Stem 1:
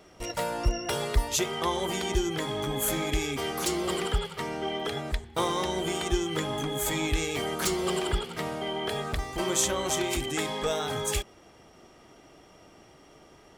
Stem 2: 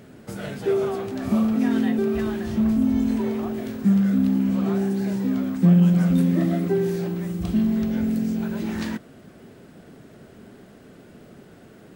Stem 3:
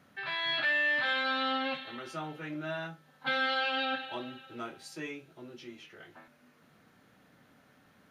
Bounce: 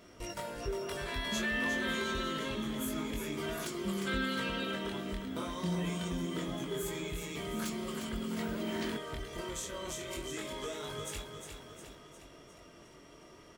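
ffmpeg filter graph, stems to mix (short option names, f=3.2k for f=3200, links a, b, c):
-filter_complex "[0:a]acompressor=threshold=-37dB:ratio=5,flanger=delay=20:depth=4.5:speed=0.26,volume=1dB,asplit=2[a][b];[b]volume=-7dB[c];[1:a]highpass=f=260:p=1,volume=-7dB,afade=t=in:st=8.11:d=0.34:silence=0.398107[d];[2:a]adelay=800,volume=-6.5dB[e];[c]aecho=0:1:356|712|1068|1424|1780|2136|2492|2848:1|0.53|0.281|0.149|0.0789|0.0418|0.0222|0.0117[f];[a][d][e][f]amix=inputs=4:normalize=0,asuperstop=centerf=790:order=4:qfactor=6.7"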